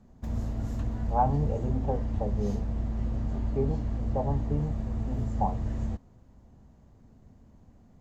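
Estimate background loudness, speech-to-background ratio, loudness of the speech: -33.0 LUFS, 0.0 dB, -33.0 LUFS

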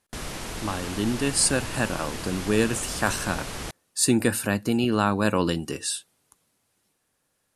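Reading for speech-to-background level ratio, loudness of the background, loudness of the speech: 9.5 dB, -34.5 LUFS, -25.0 LUFS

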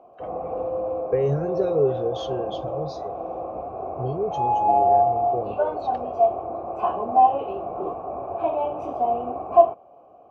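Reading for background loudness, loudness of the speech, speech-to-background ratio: -24.5 LUFS, -28.5 LUFS, -4.0 dB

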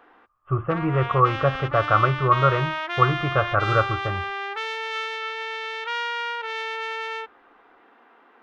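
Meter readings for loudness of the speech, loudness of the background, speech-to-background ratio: -22.5 LUFS, -29.0 LUFS, 6.5 dB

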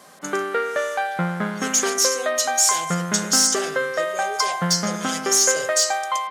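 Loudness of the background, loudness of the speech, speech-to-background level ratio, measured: -25.0 LUFS, -20.5 LUFS, 4.5 dB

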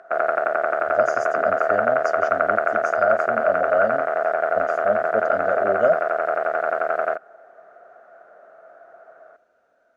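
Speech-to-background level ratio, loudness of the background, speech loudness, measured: -3.0 dB, -22.0 LUFS, -25.0 LUFS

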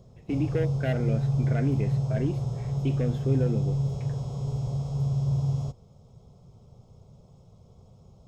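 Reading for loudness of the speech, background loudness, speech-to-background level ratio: -32.0 LUFS, -28.5 LUFS, -3.5 dB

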